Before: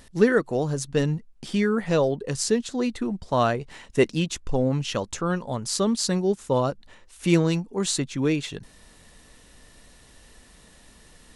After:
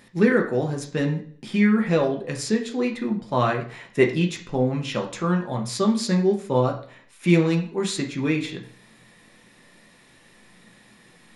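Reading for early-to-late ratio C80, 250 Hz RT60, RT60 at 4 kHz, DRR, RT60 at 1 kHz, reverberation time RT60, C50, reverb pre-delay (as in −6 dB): 14.5 dB, 0.60 s, 0.45 s, 1.0 dB, 0.50 s, 0.55 s, 10.0 dB, 3 ms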